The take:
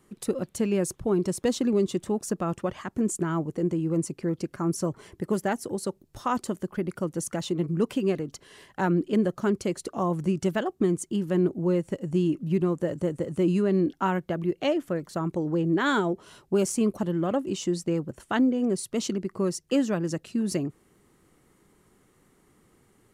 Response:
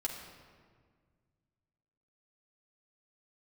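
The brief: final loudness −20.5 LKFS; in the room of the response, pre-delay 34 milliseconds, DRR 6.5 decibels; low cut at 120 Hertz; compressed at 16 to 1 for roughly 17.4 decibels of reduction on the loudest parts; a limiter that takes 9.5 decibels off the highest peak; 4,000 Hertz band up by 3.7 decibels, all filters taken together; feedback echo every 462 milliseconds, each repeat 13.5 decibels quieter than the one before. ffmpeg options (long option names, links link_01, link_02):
-filter_complex "[0:a]highpass=120,equalizer=frequency=4000:width_type=o:gain=5,acompressor=threshold=-36dB:ratio=16,alimiter=level_in=7.5dB:limit=-24dB:level=0:latency=1,volume=-7.5dB,aecho=1:1:462|924:0.211|0.0444,asplit=2[link_01][link_02];[1:a]atrim=start_sample=2205,adelay=34[link_03];[link_02][link_03]afir=irnorm=-1:irlink=0,volume=-8.5dB[link_04];[link_01][link_04]amix=inputs=2:normalize=0,volume=21dB"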